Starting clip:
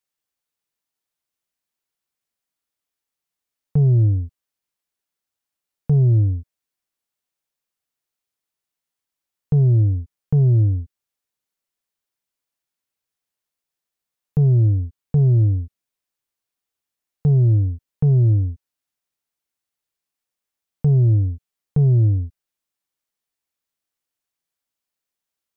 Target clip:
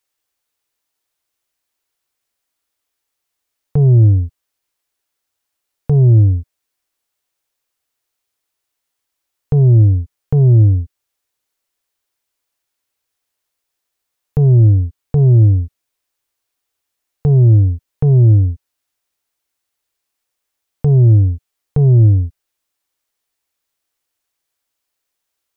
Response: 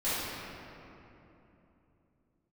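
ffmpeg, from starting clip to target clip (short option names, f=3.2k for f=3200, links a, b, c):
-af "equalizer=f=180:w=3.2:g=-14.5,volume=8.5dB"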